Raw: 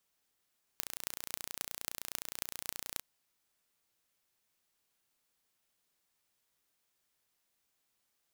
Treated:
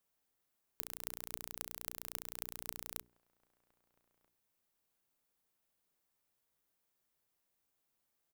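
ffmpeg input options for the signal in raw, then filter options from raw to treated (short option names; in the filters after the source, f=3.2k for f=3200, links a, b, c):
-f lavfi -i "aevalsrc='0.447*eq(mod(n,1490),0)*(0.5+0.5*eq(mod(n,11920),0))':d=2.21:s=44100"
-filter_complex "[0:a]equalizer=f=4.2k:w=0.32:g=-7.5,bandreject=f=60:t=h:w=6,bandreject=f=120:t=h:w=6,bandreject=f=180:t=h:w=6,bandreject=f=240:t=h:w=6,bandreject=f=300:t=h:w=6,bandreject=f=360:t=h:w=6,bandreject=f=420:t=h:w=6,asplit=2[a][b];[b]adelay=1283,volume=-25dB,highshelf=f=4k:g=-28.9[c];[a][c]amix=inputs=2:normalize=0"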